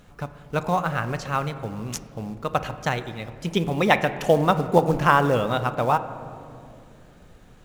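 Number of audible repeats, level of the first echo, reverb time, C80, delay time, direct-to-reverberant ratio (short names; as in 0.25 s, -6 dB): none, none, 2.5 s, 13.5 dB, none, 10.0 dB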